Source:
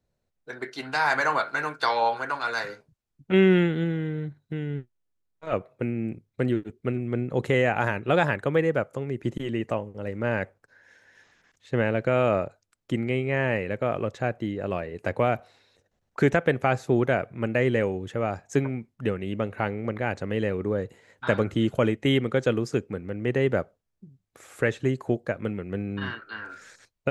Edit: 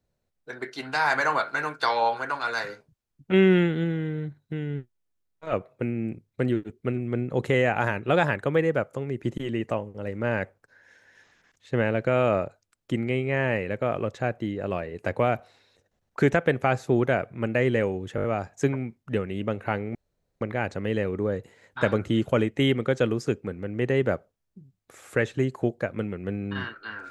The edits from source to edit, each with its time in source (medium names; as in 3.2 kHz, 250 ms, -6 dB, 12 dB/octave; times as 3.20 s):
18.16 s: stutter 0.02 s, 5 plays
19.87 s: insert room tone 0.46 s